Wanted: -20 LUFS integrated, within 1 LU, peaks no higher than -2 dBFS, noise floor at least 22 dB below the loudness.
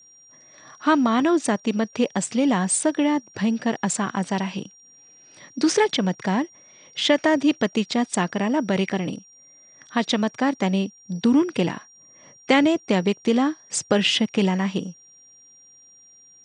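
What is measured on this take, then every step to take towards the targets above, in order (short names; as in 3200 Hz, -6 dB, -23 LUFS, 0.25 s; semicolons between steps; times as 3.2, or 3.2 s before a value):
steady tone 5700 Hz; tone level -49 dBFS; loudness -22.5 LUFS; peak -5.0 dBFS; loudness target -20.0 LUFS
-> notch 5700 Hz, Q 30; gain +2.5 dB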